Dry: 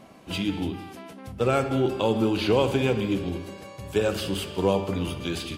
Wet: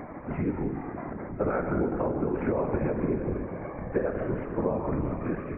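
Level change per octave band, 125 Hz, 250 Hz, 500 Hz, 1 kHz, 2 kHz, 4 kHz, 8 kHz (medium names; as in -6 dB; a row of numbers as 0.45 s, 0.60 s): -3.0 dB, -2.5 dB, -4.0 dB, -3.5 dB, -6.0 dB, under -35 dB, under -40 dB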